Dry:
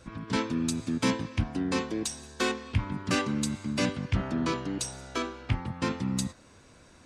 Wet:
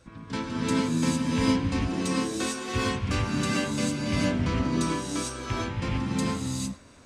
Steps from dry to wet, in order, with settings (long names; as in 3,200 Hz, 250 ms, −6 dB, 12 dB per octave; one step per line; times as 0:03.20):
reverb whose tail is shaped and stops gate 480 ms rising, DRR −6 dB
level −4.5 dB